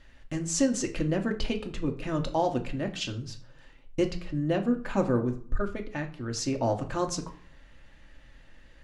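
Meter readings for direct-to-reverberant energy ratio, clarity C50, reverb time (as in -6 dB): 3.0 dB, 13.5 dB, 0.50 s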